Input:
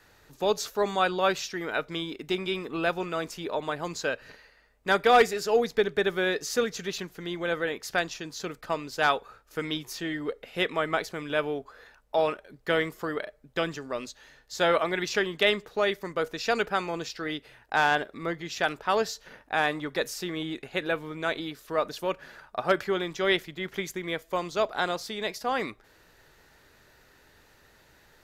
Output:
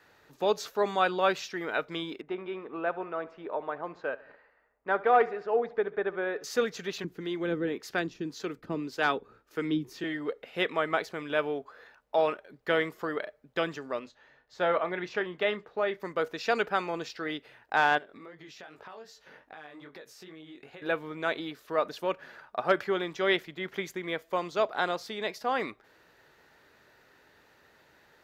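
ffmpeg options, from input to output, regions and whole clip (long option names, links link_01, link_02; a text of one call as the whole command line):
ffmpeg -i in.wav -filter_complex "[0:a]asettb=1/sr,asplit=3[link_01][link_02][link_03];[link_01]atrim=end=2.214[link_04];[link_02]atrim=start=2.21:end=6.44,asetpts=PTS-STARTPTS,afade=type=in:duration=0.004:curve=qsin,afade=type=out:start_time=4.226:duration=0.004:curve=qsin,lowpass=1400,equalizer=frequency=140:width_type=o:width=2.6:gain=-8.5,aecho=1:1:69|138|207|276:0.106|0.054|0.0276|0.0141,atrim=end_sample=186543[link_05];[link_03]atrim=start=6.436[link_06];[link_04][link_05]acrossfade=duration=0.004:curve1=hsin:curve2=qsin[link_07];[link_07][link_06]acrossfade=duration=0.004:curve1=qsin:curve2=hsin,asettb=1/sr,asplit=3[link_08][link_09][link_10];[link_08]atrim=end=7.044[link_11];[link_09]atrim=start=7.04:end=10.04,asetpts=PTS-STARTPTS,afade=type=in:duration=0.004:curve=qsin,afade=type=out:start_time=2.996:duration=0.004:curve=qsin,lowshelf=frequency=460:width_type=q:width=1.5:gain=8,acrossover=split=450[link_12][link_13];[link_12]aeval=exprs='val(0)*(1-0.7/2+0.7/2*cos(2*PI*1.8*n/s))':channel_layout=same[link_14];[link_13]aeval=exprs='val(0)*(1-0.7/2-0.7/2*cos(2*PI*1.8*n/s))':channel_layout=same[link_15];[link_14][link_15]amix=inputs=2:normalize=0[link_16];[link_10]atrim=start=10.036[link_17];[link_11][link_16]acrossfade=duration=0.004:curve1=hsin:curve2=qsin[link_18];[link_18][link_17]acrossfade=duration=0.004:curve1=qsin:curve2=hsin,asettb=1/sr,asplit=3[link_19][link_20][link_21];[link_19]atrim=end=13.994[link_22];[link_20]atrim=start=13.99:end=16,asetpts=PTS-STARTPTS,afade=type=in:duration=0.004:curve=qsin,afade=type=out:start_time=2.006:duration=0.004:curve=qsin,lowpass=frequency=1400:poles=1,equalizer=frequency=280:width_type=o:width=1.9:gain=-3.5,asplit=2[link_23][link_24];[link_24]adelay=28,volume=-14dB[link_25];[link_23][link_25]amix=inputs=2:normalize=0,atrim=end_sample=88641[link_26];[link_21]atrim=start=15.996[link_27];[link_22][link_26]acrossfade=duration=0.004:curve1=hsin:curve2=qsin[link_28];[link_28][link_27]acrossfade=duration=0.004:curve1=qsin:curve2=hsin,asettb=1/sr,asplit=3[link_29][link_30][link_31];[link_29]atrim=end=17.984[link_32];[link_30]atrim=start=17.98:end=20.82,asetpts=PTS-STARTPTS,afade=type=in:duration=0.004:curve=qsin,afade=type=out:start_time=2.836:duration=0.004:curve=qsin,flanger=delay=18.5:depth=4.2:speed=2.5,acompressor=threshold=-42dB:ratio=10:attack=3.2:release=140:knee=1:detection=peak[link_33];[link_31]atrim=start=20.816[link_34];[link_32][link_33]acrossfade=duration=0.004:curve1=hsin:curve2=qsin[link_35];[link_35][link_34]acrossfade=duration=0.004:curve1=qsin:curve2=hsin,highpass=frequency=220:poles=1,equalizer=frequency=9800:width=0.46:gain=-9.5" out.wav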